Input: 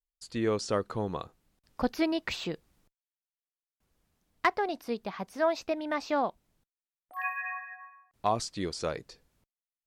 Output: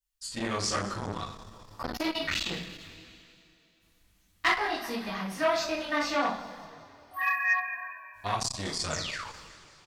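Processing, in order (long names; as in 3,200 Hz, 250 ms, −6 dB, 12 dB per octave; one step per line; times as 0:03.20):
multi-voice chorus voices 2, 1 Hz, delay 19 ms, depth 3 ms
sound drawn into the spectrogram fall, 0:08.90–0:09.27, 780–8,000 Hz −47 dBFS
parametric band 450 Hz −13.5 dB 2.2 octaves
mains-hum notches 60/120/180 Hz
on a send: echo with shifted repeats 191 ms, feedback 55%, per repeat −41 Hz, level −18 dB
on the sum: coupled-rooms reverb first 0.41 s, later 2.9 s, from −22 dB, DRR −6 dB
saturating transformer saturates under 2,200 Hz
level +6.5 dB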